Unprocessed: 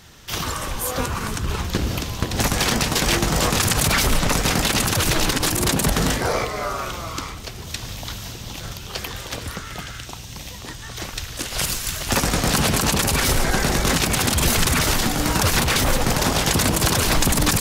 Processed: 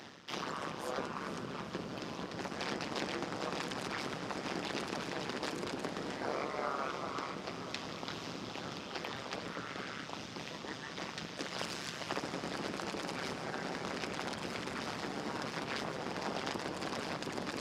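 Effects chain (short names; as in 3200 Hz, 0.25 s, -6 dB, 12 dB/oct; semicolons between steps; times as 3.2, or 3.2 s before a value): octaver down 2 oct, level +4 dB; tape spacing loss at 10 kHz 22 dB; compressor, threshold -24 dBFS, peak gain reduction 12.5 dB; AM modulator 140 Hz, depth 95%; HPF 310 Hz 12 dB/oct; reverse; upward compressor, threshold -35 dBFS; reverse; bell 5000 Hz +5 dB 0.25 oct; on a send: diffused feedback echo 0.476 s, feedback 78%, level -12.5 dB; on the sum: gain -2 dB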